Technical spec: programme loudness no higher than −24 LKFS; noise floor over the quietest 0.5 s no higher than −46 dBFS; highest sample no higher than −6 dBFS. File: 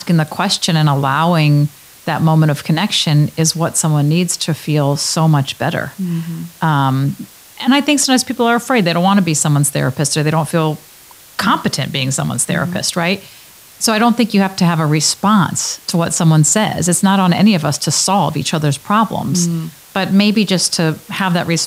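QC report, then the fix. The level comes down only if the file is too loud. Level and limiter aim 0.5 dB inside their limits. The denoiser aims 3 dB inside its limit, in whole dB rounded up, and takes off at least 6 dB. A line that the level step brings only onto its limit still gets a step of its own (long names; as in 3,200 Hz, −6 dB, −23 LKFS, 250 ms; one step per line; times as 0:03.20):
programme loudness −14.5 LKFS: out of spec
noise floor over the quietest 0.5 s −41 dBFS: out of spec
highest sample −2.5 dBFS: out of spec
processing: level −10 dB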